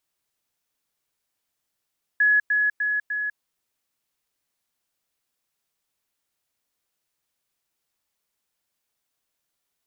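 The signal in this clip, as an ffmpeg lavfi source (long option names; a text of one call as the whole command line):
ffmpeg -f lavfi -i "aevalsrc='pow(10,(-15-3*floor(t/0.3))/20)*sin(2*PI*1690*t)*clip(min(mod(t,0.3),0.2-mod(t,0.3))/0.005,0,1)':duration=1.2:sample_rate=44100" out.wav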